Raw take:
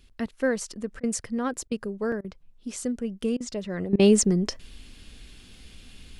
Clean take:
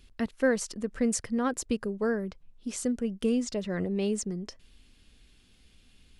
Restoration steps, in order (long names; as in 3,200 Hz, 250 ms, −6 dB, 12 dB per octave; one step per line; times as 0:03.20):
repair the gap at 0:02.12, 2.6 ms
repair the gap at 0:01.00/0:01.68/0:02.21/0:03.37/0:03.96, 33 ms
level correction −12 dB, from 0:03.93